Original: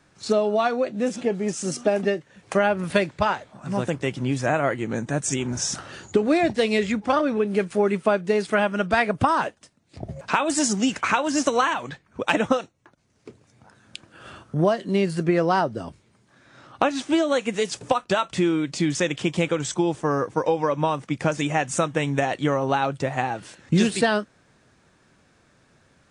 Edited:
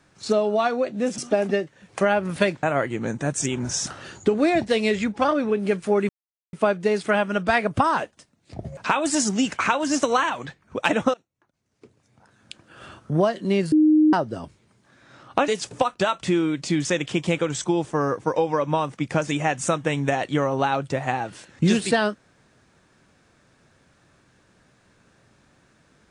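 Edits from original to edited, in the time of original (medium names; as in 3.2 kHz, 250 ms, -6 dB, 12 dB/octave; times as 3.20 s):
1.18–1.72 s: delete
3.17–4.51 s: delete
7.97 s: insert silence 0.44 s
12.58–14.42 s: fade in, from -21 dB
15.16–15.57 s: bleep 308 Hz -12.5 dBFS
16.92–17.58 s: delete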